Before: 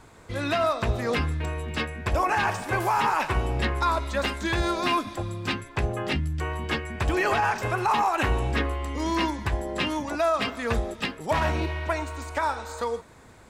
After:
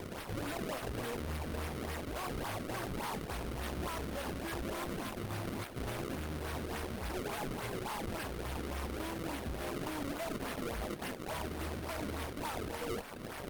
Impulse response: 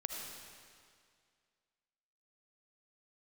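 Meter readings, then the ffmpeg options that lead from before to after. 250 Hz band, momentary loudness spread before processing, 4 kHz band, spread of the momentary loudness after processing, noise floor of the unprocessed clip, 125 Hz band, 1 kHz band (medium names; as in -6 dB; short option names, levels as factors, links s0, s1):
-9.0 dB, 7 LU, -12.0 dB, 2 LU, -50 dBFS, -12.0 dB, -16.0 dB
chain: -filter_complex "[0:a]equalizer=f=4400:t=o:w=0.88:g=-6,areverse,acompressor=threshold=0.0251:ratio=20,areverse,alimiter=level_in=2.51:limit=0.0631:level=0:latency=1:release=442,volume=0.398,asplit=2[s0][s1];[s1]aeval=exprs='(mod(211*val(0)+1,2)-1)/211':c=same,volume=0.501[s2];[s0][s2]amix=inputs=2:normalize=0,acrusher=samples=30:mix=1:aa=0.000001:lfo=1:lforange=48:lforate=3.5,asoftclip=type=tanh:threshold=0.0106,aeval=exprs='0.0106*(cos(1*acos(clip(val(0)/0.0106,-1,1)))-cos(1*PI/2))+0.000075*(cos(3*acos(clip(val(0)/0.0106,-1,1)))-cos(3*PI/2))+0.000376*(cos(4*acos(clip(val(0)/0.0106,-1,1)))-cos(4*PI/2))+0.00531*(cos(7*acos(clip(val(0)/0.0106,-1,1)))-cos(7*PI/2))':c=same,volume=2" -ar 48000 -c:a libopus -b:a 32k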